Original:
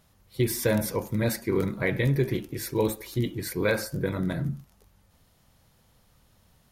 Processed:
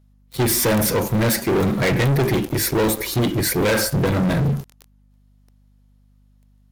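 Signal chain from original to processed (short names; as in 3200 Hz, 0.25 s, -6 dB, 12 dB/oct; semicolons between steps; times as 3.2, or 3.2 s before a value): sample leveller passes 5; hum 50 Hz, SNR 34 dB; gain -2 dB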